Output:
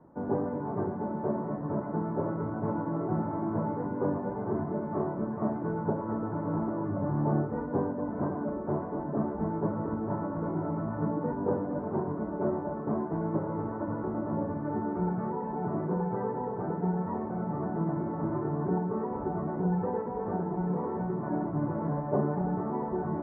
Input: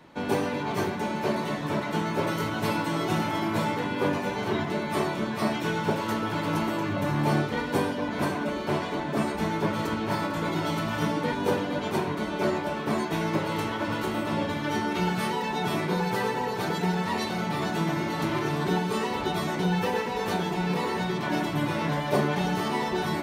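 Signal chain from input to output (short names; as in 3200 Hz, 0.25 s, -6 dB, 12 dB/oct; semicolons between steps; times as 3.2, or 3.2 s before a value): Bessel low-pass 770 Hz, order 8; gain -2 dB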